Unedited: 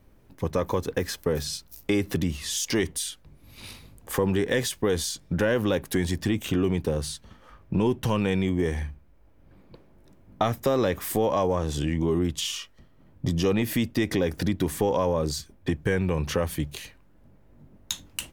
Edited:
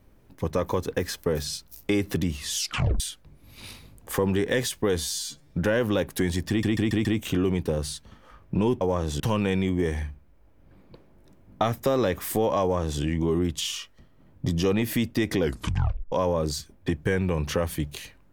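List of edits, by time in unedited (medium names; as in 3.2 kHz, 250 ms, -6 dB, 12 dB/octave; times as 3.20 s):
2.56 s: tape stop 0.44 s
5.00–5.25 s: stretch 2×
6.24 s: stutter 0.14 s, 5 plays
11.42–11.81 s: copy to 8.00 s
14.19 s: tape stop 0.73 s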